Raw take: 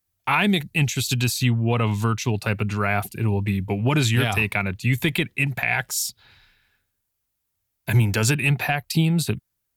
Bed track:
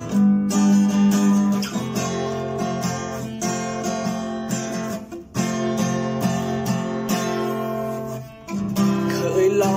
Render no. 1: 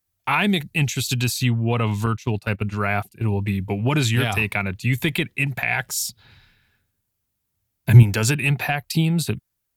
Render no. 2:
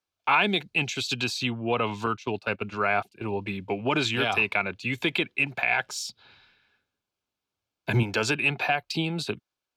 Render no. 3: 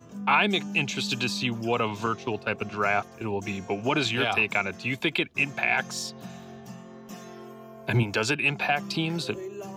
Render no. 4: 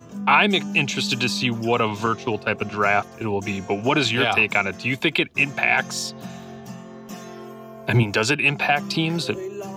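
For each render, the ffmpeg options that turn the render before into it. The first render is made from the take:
-filter_complex "[0:a]asettb=1/sr,asplit=3[s0][s1][s2];[s0]atrim=end=2.064[s3];[s1]atrim=start=2.06:end=3.32,asetpts=PTS-STARTPTS,afade=t=in:d=0.004:c=qsin,afade=t=out:st=1.256:d=0.004:c=qsin,agate=range=0.224:threshold=0.0447:ratio=16:release=100:detection=peak[s4];[s2]atrim=start=3.316[s5];[s3][s4]acrossfade=d=0.004:c1=hsin:c2=qsin[s6];[s6][s5]acrossfade=d=0.004:c1=qsin:c2=hsin,asettb=1/sr,asplit=3[s7][s8][s9];[s7]atrim=end=5.864[s10];[s8]atrim=start=5.86:end=8.03,asetpts=PTS-STARTPTS,afade=t=in:d=0.004:c=qsin,afade=t=out:st=2.166:d=0.004:c=qsin,equalizer=f=140:w=0.52:g=9[s11];[s9]atrim=start=8.026[s12];[s10][s11]acrossfade=d=0.004:c1=hsin:c2=qsin[s13];[s13][s12]acrossfade=d=0.004:c1=qsin:c2=hsin"
-filter_complex "[0:a]acrossover=split=270 5600:gain=0.141 1 0.0794[s0][s1][s2];[s0][s1][s2]amix=inputs=3:normalize=0,bandreject=f=1900:w=5.1"
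-filter_complex "[1:a]volume=0.1[s0];[0:a][s0]amix=inputs=2:normalize=0"
-af "volume=1.88"

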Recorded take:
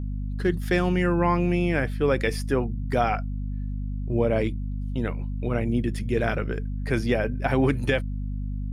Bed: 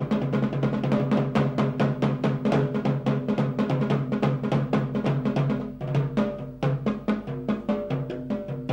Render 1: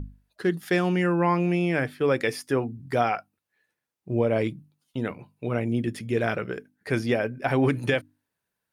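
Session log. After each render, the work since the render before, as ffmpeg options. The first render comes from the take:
-af "bandreject=f=50:t=h:w=6,bandreject=f=100:t=h:w=6,bandreject=f=150:t=h:w=6,bandreject=f=200:t=h:w=6,bandreject=f=250:t=h:w=6,bandreject=f=300:t=h:w=6"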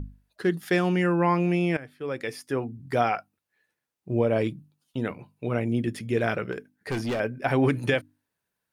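-filter_complex "[0:a]asettb=1/sr,asplit=3[s0][s1][s2];[s0]atrim=end=4.264[s3];[s1]atrim=start=4.26:end=5.01,asetpts=PTS-STARTPTS,afade=t=in:d=0.004:c=qsin,afade=t=out:st=0.746:d=0.004:c=qsin,bandreject=f=2100:w=12[s4];[s2]atrim=start=5.006[s5];[s3][s4]acrossfade=d=0.004:c1=hsin:c2=qsin[s6];[s6][s5]acrossfade=d=0.004:c1=qsin:c2=hsin,asettb=1/sr,asplit=3[s7][s8][s9];[s7]atrim=end=6.524[s10];[s8]atrim=start=6.52:end=7.2,asetpts=PTS-STARTPTS,afade=t=in:d=0.004:c=qsin,afade=t=out:st=0.676:d=0.004:c=qsin,asoftclip=type=hard:threshold=0.0562[s11];[s9]atrim=start=7.196[s12];[s10][s11]acrossfade=d=0.004:c1=hsin:c2=qsin[s13];[s13][s12]acrossfade=d=0.004:c1=qsin:c2=hsin,asplit=2[s14][s15];[s14]atrim=end=1.77,asetpts=PTS-STARTPTS,afade=t=out:st=1.766:d=0.004:c=hsin:silence=0.133352[s16];[s15]atrim=start=1.77,asetpts=PTS-STARTPTS,afade=t=in:d=1.26:silence=0.133352[s17];[s16][s17]concat=n=2:v=0:a=1"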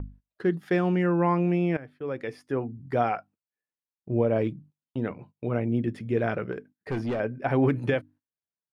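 -af "agate=range=0.112:threshold=0.00355:ratio=16:detection=peak,lowpass=f=1300:p=1"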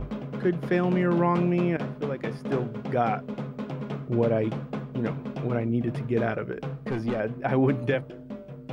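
-filter_complex "[1:a]volume=0.335[s0];[0:a][s0]amix=inputs=2:normalize=0"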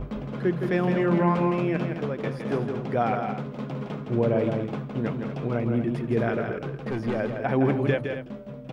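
-af "aecho=1:1:163.3|236.2:0.501|0.282"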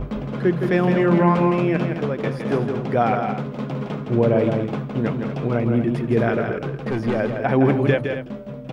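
-af "volume=1.88"

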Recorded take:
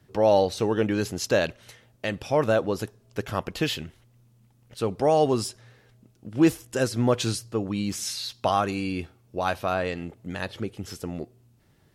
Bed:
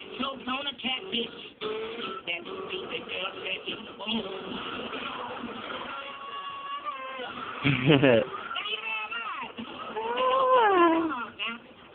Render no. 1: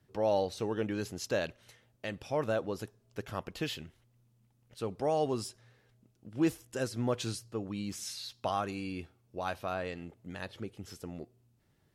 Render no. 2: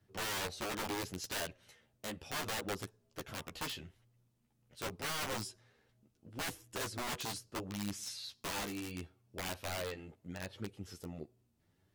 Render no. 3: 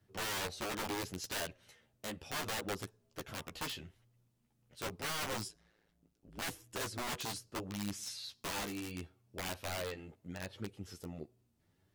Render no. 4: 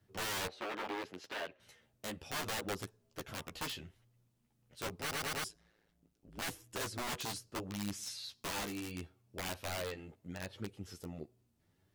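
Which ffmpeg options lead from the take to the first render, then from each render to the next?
-af "volume=0.335"
-af "aeval=exprs='(mod(29.9*val(0)+1,2)-1)/29.9':c=same,flanger=delay=9.4:depth=4.8:regen=-5:speed=0.75:shape=triangular"
-filter_complex "[0:a]asettb=1/sr,asplit=3[s0][s1][s2];[s0]atrim=end=5.484[s3];[s1]atrim=start=5.48:end=6.42,asetpts=PTS-STARTPTS,afade=t=in:d=0.004:c=qsin,afade=t=out:st=0.936:d=0.004:c=qsin,aeval=exprs='val(0)*sin(2*PI*54*n/s)':c=same[s4];[s2]atrim=start=6.416[s5];[s3][s4]acrossfade=d=0.004:c1=hsin:c2=qsin[s6];[s6][s5]acrossfade=d=0.004:c1=qsin:c2=hsin"
-filter_complex "[0:a]asettb=1/sr,asplit=3[s0][s1][s2];[s0]atrim=end=0.484[s3];[s1]atrim=start=0.48:end=1.6,asetpts=PTS-STARTPTS,afade=t=in:d=0.004:c=qsin,afade=t=out:st=1.116:d=0.004:c=qsin,acrossover=split=250 3600:gain=0.126 1 0.112[s4][s5][s6];[s4][s5][s6]amix=inputs=3:normalize=0[s7];[s2]atrim=start=1.596[s8];[s3][s7]acrossfade=d=0.004:c1=hsin:c2=qsin[s9];[s9][s8]acrossfade=d=0.004:c1=qsin:c2=hsin,asplit=5[s10][s11][s12][s13][s14];[s10]atrim=end=5.112[s15];[s11]atrim=start=4.998:end=5.112[s16];[s12]atrim=start=4.998:end=5.112[s17];[s13]atrim=start=4.998:end=5.112[s18];[s14]atrim=start=5.438[s19];[s15][s16]acrossfade=d=0.004:c1=hsin:c2=hsin[s20];[s20][s17]acrossfade=d=0.004:c1=hsin:c2=hsin[s21];[s21][s18]acrossfade=d=0.004:c1=hsin:c2=hsin[s22];[s22][s19]acrossfade=d=0.004:c1=hsin:c2=hsin"

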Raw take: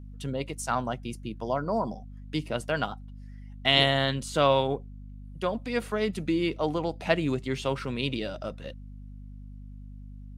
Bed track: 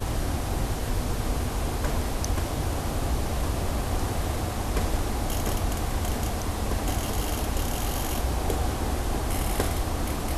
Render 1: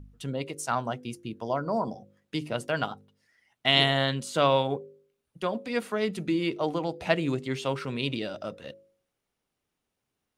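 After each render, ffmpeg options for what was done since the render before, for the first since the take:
-af "bandreject=f=50:t=h:w=4,bandreject=f=100:t=h:w=4,bandreject=f=150:t=h:w=4,bandreject=f=200:t=h:w=4,bandreject=f=250:t=h:w=4,bandreject=f=300:t=h:w=4,bandreject=f=350:t=h:w=4,bandreject=f=400:t=h:w=4,bandreject=f=450:t=h:w=4,bandreject=f=500:t=h:w=4,bandreject=f=550:t=h:w=4"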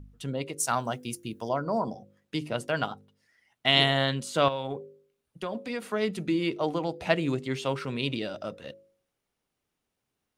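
-filter_complex "[0:a]asettb=1/sr,asplit=3[s0][s1][s2];[s0]atrim=end=0.604[s3];[s1]atrim=start=0.6:end=1.49,asetpts=PTS-STARTPTS,afade=t=in:d=0.004:c=qsin,afade=t=out:st=0.886:d=0.004:c=qsin,aemphasis=mode=production:type=50kf[s4];[s2]atrim=start=1.486[s5];[s3][s4]acrossfade=d=0.004:c1=hsin:c2=qsin[s6];[s6][s5]acrossfade=d=0.004:c1=qsin:c2=hsin,asettb=1/sr,asplit=3[s7][s8][s9];[s7]atrim=end=4.484[s10];[s8]atrim=start=4.48:end=5.83,asetpts=PTS-STARTPTS,afade=t=in:d=0.004:c=qsin,afade=t=out:st=1.346:d=0.004:c=qsin,acompressor=threshold=0.0398:ratio=5:attack=3.2:release=140:knee=1:detection=peak[s11];[s9]atrim=start=5.826[s12];[s10][s11]acrossfade=d=0.004:c1=hsin:c2=qsin[s13];[s13][s12]acrossfade=d=0.004:c1=qsin:c2=hsin"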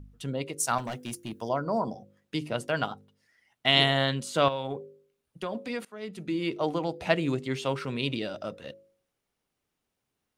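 -filter_complex "[0:a]asettb=1/sr,asplit=3[s0][s1][s2];[s0]atrim=end=0.784[s3];[s1]atrim=start=0.78:end=1.32,asetpts=PTS-STARTPTS,afade=t=in:d=0.004:c=qsin,afade=t=out:st=0.536:d=0.004:c=qsin,asoftclip=type=hard:threshold=0.0299[s4];[s2]atrim=start=1.316[s5];[s3][s4]acrossfade=d=0.004:c1=hsin:c2=qsin[s6];[s6][s5]acrossfade=d=0.004:c1=qsin:c2=hsin,asplit=2[s7][s8];[s7]atrim=end=5.85,asetpts=PTS-STARTPTS,afade=t=out:st=5.846:d=0.004:c=hsin:silence=0.0749894[s9];[s8]atrim=start=5.85,asetpts=PTS-STARTPTS,afade=t=in:d=0.76:silence=0.0749894[s10];[s9][s10]concat=n=2:v=0:a=1"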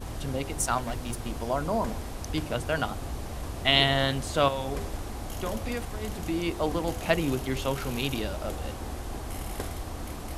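-filter_complex "[1:a]volume=0.376[s0];[0:a][s0]amix=inputs=2:normalize=0"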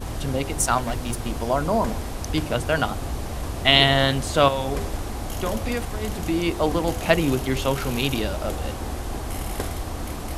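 -af "volume=2,alimiter=limit=0.794:level=0:latency=1"

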